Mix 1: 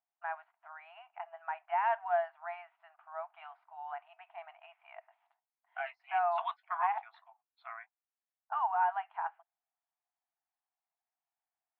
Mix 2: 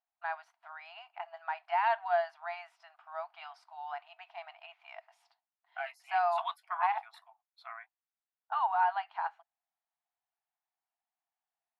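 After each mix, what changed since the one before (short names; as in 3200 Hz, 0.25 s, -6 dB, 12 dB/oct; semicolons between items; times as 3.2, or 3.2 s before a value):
first voice: remove air absorption 380 m; master: remove inverse Chebyshev low-pass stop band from 11000 Hz, stop band 70 dB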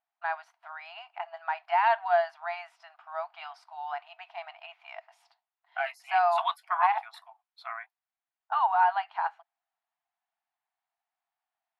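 first voice +5.0 dB; second voice +7.5 dB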